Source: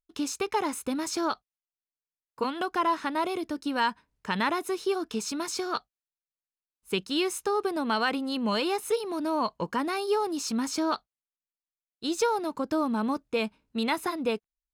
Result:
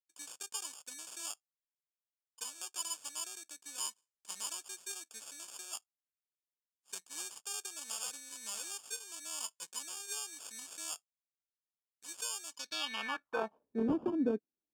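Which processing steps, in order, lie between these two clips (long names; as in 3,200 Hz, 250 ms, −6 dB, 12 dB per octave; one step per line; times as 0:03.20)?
decimation without filtering 22×
band-pass filter sweep 7,800 Hz → 290 Hz, 0:12.48–0:13.90
level +3 dB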